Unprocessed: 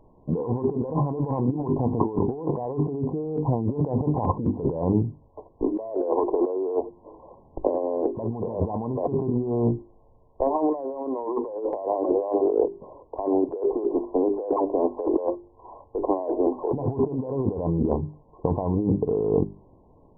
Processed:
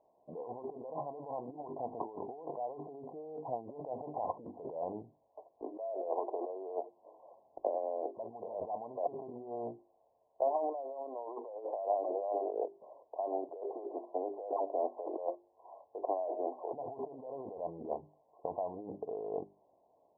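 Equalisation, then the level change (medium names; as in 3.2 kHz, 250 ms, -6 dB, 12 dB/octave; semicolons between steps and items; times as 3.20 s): band-pass filter 680 Hz, Q 4.7; -3.0 dB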